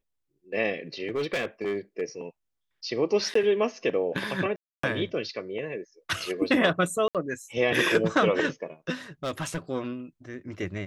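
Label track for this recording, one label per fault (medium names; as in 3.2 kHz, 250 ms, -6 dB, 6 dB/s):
1.080000	2.020000	clipped -24 dBFS
3.340000	3.350000	dropout 14 ms
4.560000	4.830000	dropout 274 ms
7.080000	7.150000	dropout 67 ms
9.240000	9.580000	clipped -25.5 dBFS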